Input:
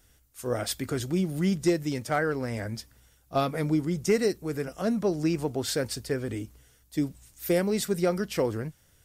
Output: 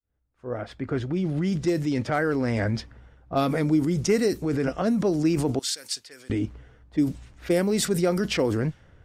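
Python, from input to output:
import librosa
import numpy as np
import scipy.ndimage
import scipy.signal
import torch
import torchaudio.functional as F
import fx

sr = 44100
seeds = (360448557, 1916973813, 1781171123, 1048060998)

p1 = fx.fade_in_head(x, sr, length_s=2.46)
p2 = fx.env_lowpass(p1, sr, base_hz=1200.0, full_db=-22.5)
p3 = fx.dynamic_eq(p2, sr, hz=280.0, q=2.7, threshold_db=-39.0, ratio=4.0, max_db=5)
p4 = fx.over_compress(p3, sr, threshold_db=-35.0, ratio=-1.0)
p5 = p3 + (p4 * 10.0 ** (1.5 / 20.0))
y = fx.differentiator(p5, sr, at=(5.59, 6.3))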